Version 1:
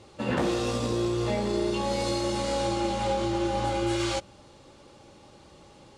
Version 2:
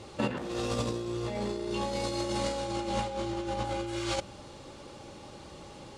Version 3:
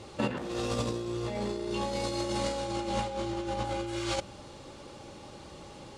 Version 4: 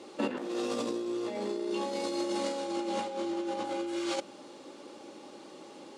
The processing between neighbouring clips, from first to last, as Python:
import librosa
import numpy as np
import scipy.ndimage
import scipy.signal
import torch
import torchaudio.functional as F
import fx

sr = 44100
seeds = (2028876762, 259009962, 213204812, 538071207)

y1 = fx.over_compress(x, sr, threshold_db=-31.0, ratio=-0.5)
y2 = y1
y3 = fx.ladder_highpass(y2, sr, hz=230.0, resonance_pct=40)
y3 = F.gain(torch.from_numpy(y3), 5.5).numpy()